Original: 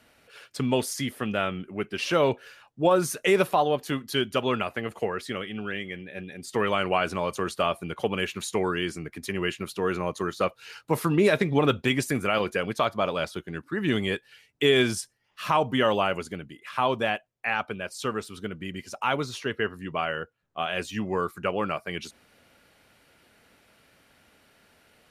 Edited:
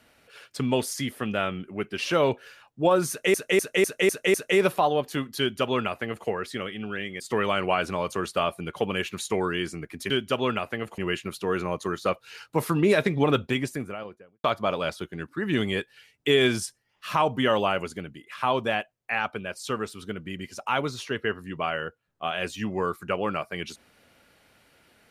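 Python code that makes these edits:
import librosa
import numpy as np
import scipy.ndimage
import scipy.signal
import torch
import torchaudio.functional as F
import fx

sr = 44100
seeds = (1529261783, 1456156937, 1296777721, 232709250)

y = fx.studio_fade_out(x, sr, start_s=11.6, length_s=1.19)
y = fx.edit(y, sr, fx.repeat(start_s=3.09, length_s=0.25, count=6),
    fx.duplicate(start_s=4.14, length_s=0.88, to_s=9.33),
    fx.cut(start_s=5.95, length_s=0.48), tone=tone)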